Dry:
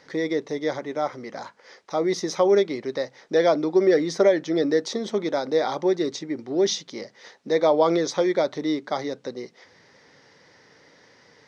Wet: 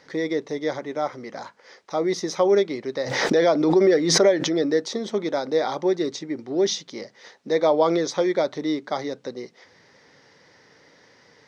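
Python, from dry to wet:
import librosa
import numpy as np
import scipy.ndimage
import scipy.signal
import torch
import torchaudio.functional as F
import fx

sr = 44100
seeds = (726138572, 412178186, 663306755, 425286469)

y = fx.pre_swell(x, sr, db_per_s=41.0, at=(3.02, 4.55))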